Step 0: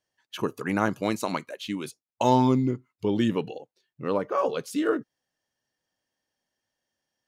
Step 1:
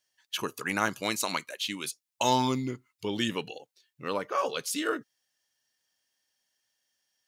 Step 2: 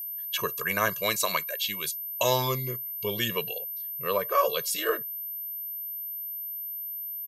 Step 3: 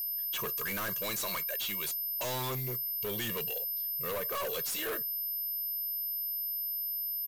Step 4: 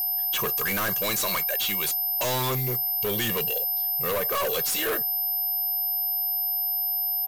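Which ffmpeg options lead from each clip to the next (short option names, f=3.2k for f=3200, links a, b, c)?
-af "tiltshelf=f=1.3k:g=-8.5"
-af "aecho=1:1:1.8:0.94,aeval=exprs='val(0)+0.0224*sin(2*PI*13000*n/s)':c=same"
-af "acrusher=bits=8:mode=log:mix=0:aa=0.000001,aeval=exprs='(tanh(79.4*val(0)+0.05)-tanh(0.05))/79.4':c=same,volume=5dB"
-af "aeval=exprs='val(0)+0.002*sin(2*PI*760*n/s)':c=same,volume=8.5dB"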